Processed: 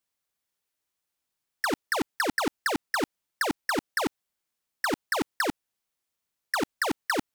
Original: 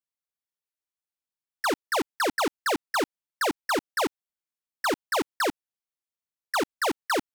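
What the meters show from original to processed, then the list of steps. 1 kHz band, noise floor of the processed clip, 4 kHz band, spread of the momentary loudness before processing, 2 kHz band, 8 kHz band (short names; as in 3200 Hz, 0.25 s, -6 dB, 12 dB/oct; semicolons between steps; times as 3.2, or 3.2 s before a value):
-3.0 dB, -84 dBFS, -2.0 dB, 4 LU, +1.0 dB, -2.0 dB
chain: negative-ratio compressor -28 dBFS, ratio -0.5; gain +4 dB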